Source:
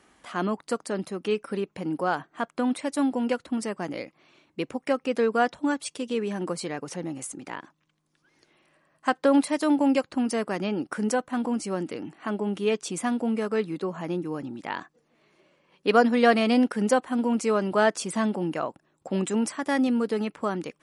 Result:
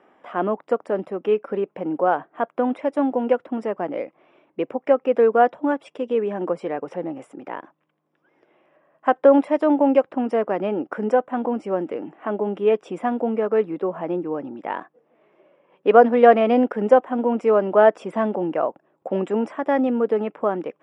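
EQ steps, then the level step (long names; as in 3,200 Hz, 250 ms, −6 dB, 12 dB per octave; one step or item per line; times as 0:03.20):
Savitzky-Golay smoothing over 25 samples
high-pass filter 140 Hz
parametric band 580 Hz +13 dB 2 octaves
−3.5 dB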